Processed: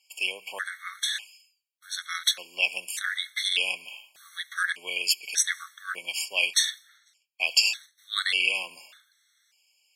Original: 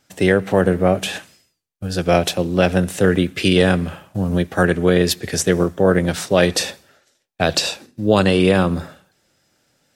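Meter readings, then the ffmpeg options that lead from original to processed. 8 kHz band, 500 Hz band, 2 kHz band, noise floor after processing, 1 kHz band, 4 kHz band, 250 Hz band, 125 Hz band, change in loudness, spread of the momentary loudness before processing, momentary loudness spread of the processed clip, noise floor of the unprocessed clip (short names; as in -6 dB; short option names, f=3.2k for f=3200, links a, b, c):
-1.5 dB, -29.5 dB, -3.5 dB, -71 dBFS, -16.5 dB, -1.0 dB, under -40 dB, under -40 dB, -8.5 dB, 9 LU, 13 LU, -67 dBFS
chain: -af "highpass=f=2.4k:t=q:w=1.5,afftfilt=real='re*gt(sin(2*PI*0.84*pts/sr)*(1-2*mod(floor(b*sr/1024/1100),2)),0)':imag='im*gt(sin(2*PI*0.84*pts/sr)*(1-2*mod(floor(b*sr/1024/1100),2)),0)':win_size=1024:overlap=0.75"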